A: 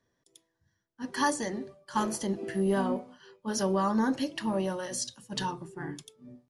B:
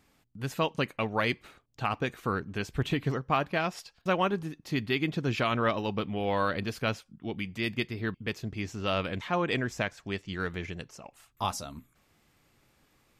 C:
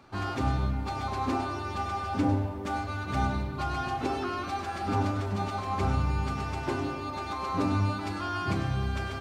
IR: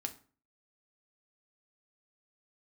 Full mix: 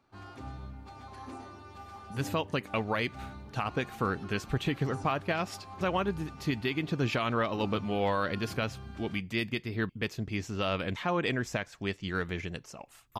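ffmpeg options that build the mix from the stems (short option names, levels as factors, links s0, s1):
-filter_complex "[0:a]acompressor=threshold=0.0178:ratio=6,volume=0.106[s0];[1:a]adelay=1750,volume=1.12[s1];[2:a]volume=0.178[s2];[s0][s1][s2]amix=inputs=3:normalize=0,alimiter=limit=0.119:level=0:latency=1:release=184"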